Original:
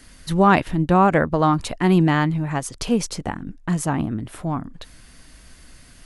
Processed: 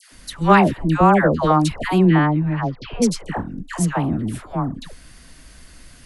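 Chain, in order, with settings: dispersion lows, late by 0.118 s, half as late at 990 Hz; 2.05–3.02 Bessel low-pass 2400 Hz, order 8; gain +2 dB

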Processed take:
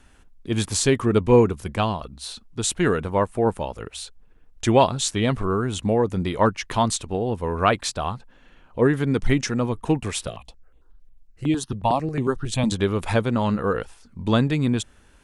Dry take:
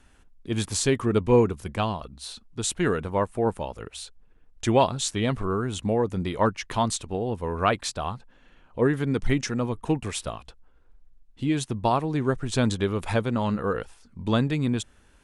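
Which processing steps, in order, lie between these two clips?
10.27–12.72 step phaser 11 Hz 260–5200 Hz; gain +3.5 dB

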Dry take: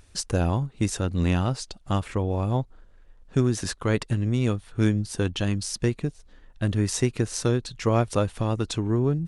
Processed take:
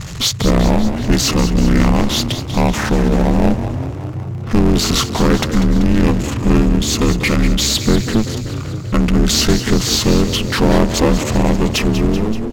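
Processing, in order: ending faded out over 0.60 s; power-law curve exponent 0.5; ring modulator 150 Hz; on a send: frequency-shifting echo 0.142 s, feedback 64%, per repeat +40 Hz, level -11 dB; on the sum: speed mistake 45 rpm record played at 33 rpm; gain +8 dB

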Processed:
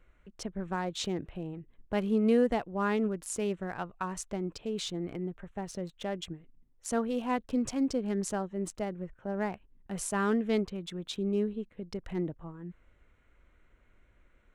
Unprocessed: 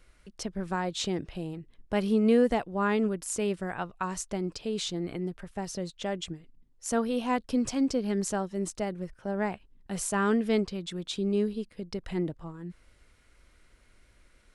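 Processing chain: Wiener smoothing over 9 samples; gain -2.5 dB

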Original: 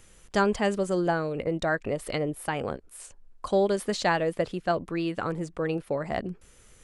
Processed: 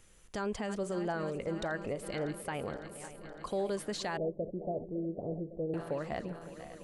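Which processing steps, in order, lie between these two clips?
regenerating reverse delay 0.278 s, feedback 79%, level -14 dB; 4.17–5.74 steep low-pass 680 Hz 48 dB/oct; limiter -19.5 dBFS, peak gain reduction 8.5 dB; gain -6.5 dB

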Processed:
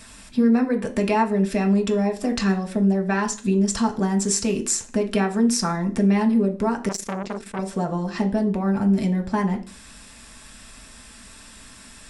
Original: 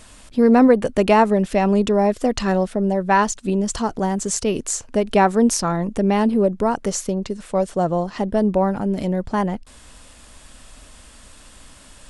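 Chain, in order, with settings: compressor 4:1, threshold -20 dBFS, peak gain reduction 10 dB; reverb RT60 0.40 s, pre-delay 3 ms, DRR 2.5 dB; 6.89–7.59 core saturation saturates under 1800 Hz

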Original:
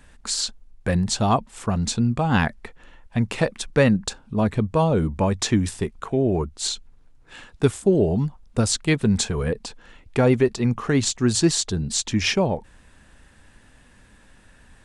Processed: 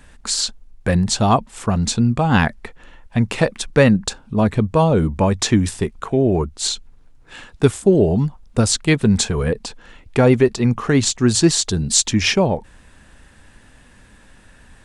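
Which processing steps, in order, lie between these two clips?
11.64–12.11 high shelf 4500 Hz +7 dB; gain +4.5 dB

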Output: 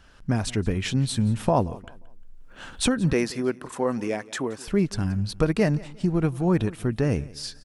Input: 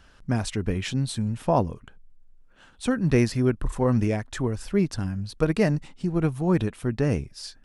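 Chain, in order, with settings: recorder AGC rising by 12 dB/s; 3.13–4.68 HPF 290 Hz 12 dB/oct; feedback echo 0.177 s, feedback 34%, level -21 dB

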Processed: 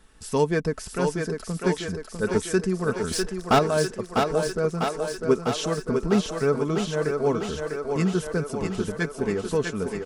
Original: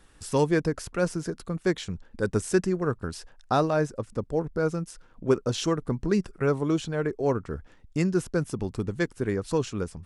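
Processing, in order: comb 4.6 ms, depth 44%; 3.11–3.59 sample leveller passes 3; thinning echo 0.649 s, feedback 71%, high-pass 250 Hz, level -4 dB

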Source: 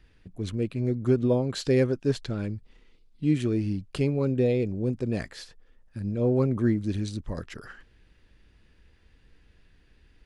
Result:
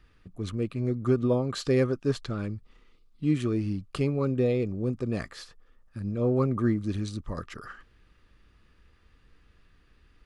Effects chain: bell 1200 Hz +13.5 dB 0.24 oct; gain -1.5 dB

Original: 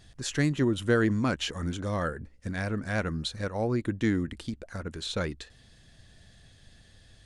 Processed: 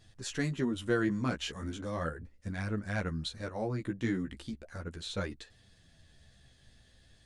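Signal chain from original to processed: flange 0.37 Hz, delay 8.9 ms, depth 7.7 ms, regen +1%; gain -2.5 dB

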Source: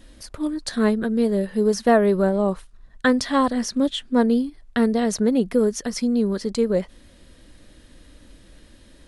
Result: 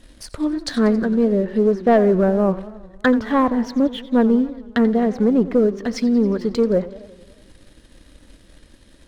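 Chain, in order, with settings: treble ducked by the level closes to 1500 Hz, closed at -18 dBFS; 0.74–1.32 high shelf 4400 Hz +9.5 dB; sample leveller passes 1; warbling echo 90 ms, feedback 65%, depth 188 cents, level -17 dB

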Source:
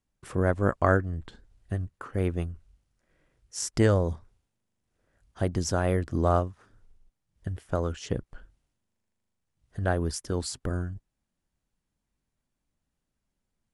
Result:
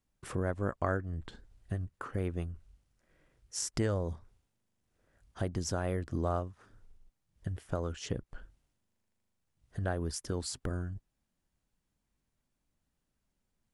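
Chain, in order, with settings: compressor 2:1, threshold -35 dBFS, peak gain reduction 10 dB

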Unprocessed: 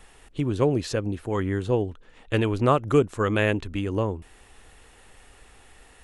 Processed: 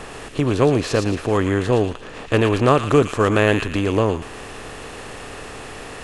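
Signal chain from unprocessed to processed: per-bin compression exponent 0.6; thin delay 0.114 s, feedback 39%, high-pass 1900 Hz, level -3.5 dB; gain +3 dB

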